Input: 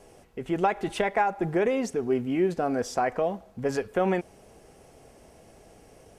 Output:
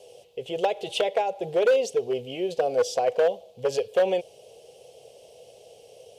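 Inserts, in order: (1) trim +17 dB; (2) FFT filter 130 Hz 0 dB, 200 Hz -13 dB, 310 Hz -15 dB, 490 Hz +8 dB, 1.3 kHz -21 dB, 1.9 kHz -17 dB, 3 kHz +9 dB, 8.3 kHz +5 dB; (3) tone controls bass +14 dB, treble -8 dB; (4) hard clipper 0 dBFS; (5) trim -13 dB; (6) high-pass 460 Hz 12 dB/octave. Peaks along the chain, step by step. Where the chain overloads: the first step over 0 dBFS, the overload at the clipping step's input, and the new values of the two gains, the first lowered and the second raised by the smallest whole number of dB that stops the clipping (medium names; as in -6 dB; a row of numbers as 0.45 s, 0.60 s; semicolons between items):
+5.5 dBFS, +6.0 dBFS, +7.5 dBFS, 0.0 dBFS, -13.0 dBFS, -10.5 dBFS; step 1, 7.5 dB; step 1 +9 dB, step 5 -5 dB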